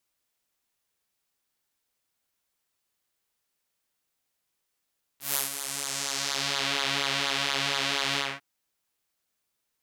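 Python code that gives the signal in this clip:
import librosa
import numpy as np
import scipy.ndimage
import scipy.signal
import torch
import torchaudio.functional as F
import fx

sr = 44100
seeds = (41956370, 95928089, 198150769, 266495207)

y = fx.sub_patch_pwm(sr, seeds[0], note=49, wave2='saw', interval_st=0, detune_cents=21, level2_db=-9.0, sub_db=-15.0, noise_db=-30.0, kind='bandpass', cutoff_hz=1900.0, q=1.3, env_oct=3.0, env_decay_s=1.49, env_sustain_pct=30, attack_ms=146.0, decay_s=0.15, sustain_db=-11.0, release_s=0.22, note_s=2.98, lfo_hz=4.2, width_pct=19, width_swing_pct=14)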